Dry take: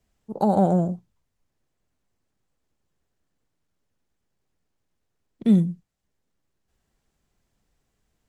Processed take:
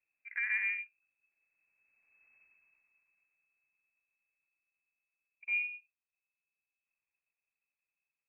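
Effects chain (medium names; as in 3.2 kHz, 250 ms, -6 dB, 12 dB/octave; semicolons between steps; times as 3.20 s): Doppler pass-by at 2.35 s, 42 m/s, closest 8.9 m; frequency inversion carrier 2.6 kHz; trim +5.5 dB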